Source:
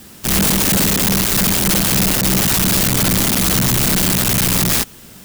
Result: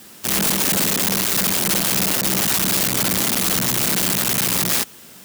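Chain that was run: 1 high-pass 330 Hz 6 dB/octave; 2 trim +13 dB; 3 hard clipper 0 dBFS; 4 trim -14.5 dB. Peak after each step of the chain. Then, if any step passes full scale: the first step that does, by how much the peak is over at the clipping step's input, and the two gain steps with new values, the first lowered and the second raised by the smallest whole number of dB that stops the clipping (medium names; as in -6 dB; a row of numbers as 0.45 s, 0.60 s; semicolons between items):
-5.0 dBFS, +8.0 dBFS, 0.0 dBFS, -14.5 dBFS; step 2, 8.0 dB; step 2 +5 dB, step 4 -6.5 dB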